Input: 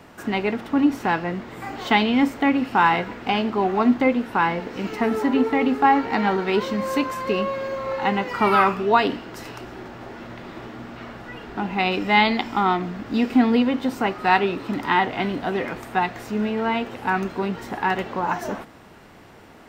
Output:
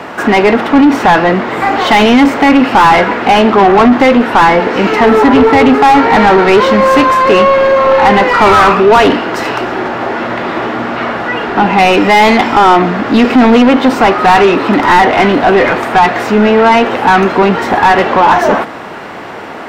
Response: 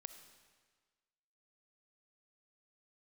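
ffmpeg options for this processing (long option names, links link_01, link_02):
-filter_complex "[0:a]asplit=2[link_01][link_02];[link_02]highpass=frequency=720:poles=1,volume=27dB,asoftclip=type=tanh:threshold=-3.5dB[link_03];[link_01][link_03]amix=inputs=2:normalize=0,lowpass=frequency=1400:poles=1,volume=-6dB,apsyclip=8.5dB,volume=-1.5dB"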